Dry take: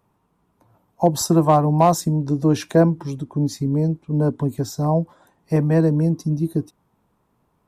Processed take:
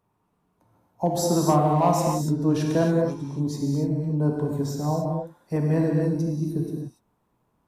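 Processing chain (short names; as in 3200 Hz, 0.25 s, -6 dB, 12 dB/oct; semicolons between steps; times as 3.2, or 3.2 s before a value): non-linear reverb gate 0.31 s flat, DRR -1 dB; gain -7.5 dB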